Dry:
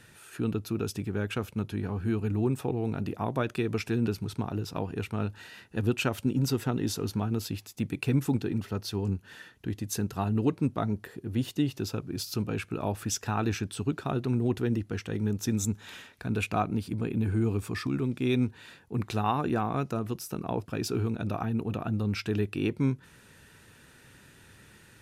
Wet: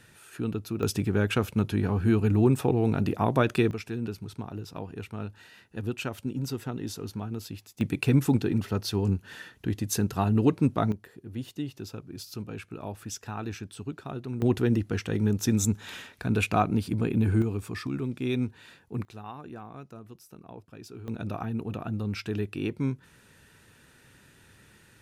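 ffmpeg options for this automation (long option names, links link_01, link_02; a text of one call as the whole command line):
ffmpeg -i in.wav -af "asetnsamples=nb_out_samples=441:pad=0,asendcmd='0.83 volume volume 6dB;3.71 volume volume -5dB;7.81 volume volume 4dB;10.92 volume volume -6.5dB;14.42 volume volume 4dB;17.42 volume volume -2dB;19.05 volume volume -14dB;21.08 volume volume -2dB',volume=-1dB" out.wav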